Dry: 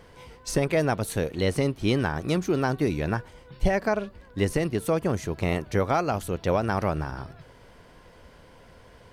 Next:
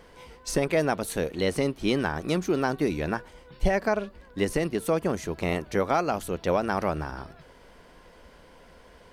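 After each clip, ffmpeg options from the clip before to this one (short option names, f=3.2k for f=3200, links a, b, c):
-af "equalizer=f=110:w=2.8:g=-14.5"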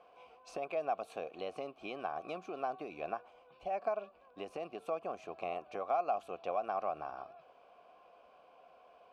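-filter_complex "[0:a]acompressor=threshold=-25dB:ratio=6,asplit=3[a][b][c];[a]bandpass=f=730:t=q:w=8,volume=0dB[d];[b]bandpass=f=1.09k:t=q:w=8,volume=-6dB[e];[c]bandpass=f=2.44k:t=q:w=8,volume=-9dB[f];[d][e][f]amix=inputs=3:normalize=0,volume=3.5dB"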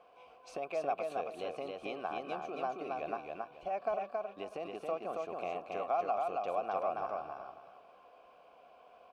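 -af "aecho=1:1:274|548|822|1096:0.708|0.177|0.0442|0.0111"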